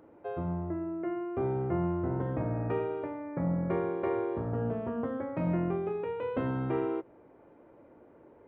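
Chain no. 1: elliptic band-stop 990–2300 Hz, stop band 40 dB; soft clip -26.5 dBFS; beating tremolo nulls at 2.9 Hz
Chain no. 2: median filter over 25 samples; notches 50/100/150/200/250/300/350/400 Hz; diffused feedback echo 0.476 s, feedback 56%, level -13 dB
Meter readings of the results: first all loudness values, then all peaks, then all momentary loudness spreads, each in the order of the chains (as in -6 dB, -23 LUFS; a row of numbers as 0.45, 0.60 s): -38.0, -33.5 LUFS; -27.0, -19.5 dBFS; 4, 13 LU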